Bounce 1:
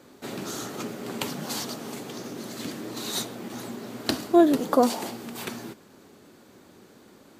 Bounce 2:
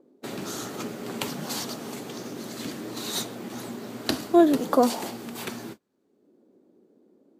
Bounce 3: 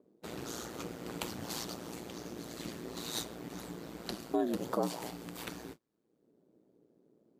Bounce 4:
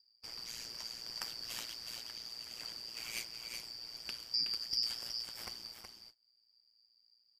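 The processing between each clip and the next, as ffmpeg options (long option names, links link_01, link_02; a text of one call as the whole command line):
ffmpeg -i in.wav -filter_complex "[0:a]agate=range=-27dB:threshold=-41dB:ratio=16:detection=peak,acrossover=split=230|500|5700[link_01][link_02][link_03][link_04];[link_02]acompressor=mode=upward:threshold=-39dB:ratio=2.5[link_05];[link_01][link_05][link_03][link_04]amix=inputs=4:normalize=0" out.wav
ffmpeg -i in.wav -af "aeval=exprs='val(0)*sin(2*PI*58*n/s)':channel_layout=same,alimiter=limit=-15.5dB:level=0:latency=1:release=282,volume=-5dB" out.wav
ffmpeg -i in.wav -filter_complex "[0:a]afftfilt=real='real(if(lt(b,272),68*(eq(floor(b/68),0)*1+eq(floor(b/68),1)*2+eq(floor(b/68),2)*3+eq(floor(b/68),3)*0)+mod(b,68),b),0)':imag='imag(if(lt(b,272),68*(eq(floor(b/68),0)*1+eq(floor(b/68),1)*2+eq(floor(b/68),2)*3+eq(floor(b/68),3)*0)+mod(b,68),b),0)':win_size=2048:overlap=0.75,asplit=2[link_01][link_02];[link_02]aecho=0:1:371:0.501[link_03];[link_01][link_03]amix=inputs=2:normalize=0,volume=-4dB" out.wav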